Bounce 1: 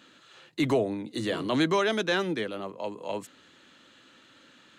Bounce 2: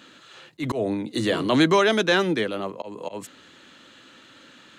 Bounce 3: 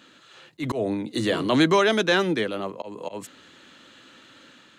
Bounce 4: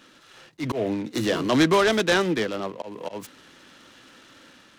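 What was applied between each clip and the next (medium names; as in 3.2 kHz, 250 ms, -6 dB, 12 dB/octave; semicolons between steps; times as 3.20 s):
slow attack 160 ms; trim +6.5 dB
level rider gain up to 3 dB; trim -3.5 dB
delay time shaken by noise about 1.9 kHz, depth 0.03 ms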